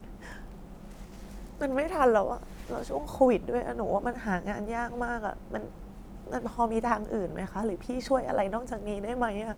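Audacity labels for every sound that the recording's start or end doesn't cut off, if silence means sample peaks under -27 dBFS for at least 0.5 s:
1.610000	5.640000	sound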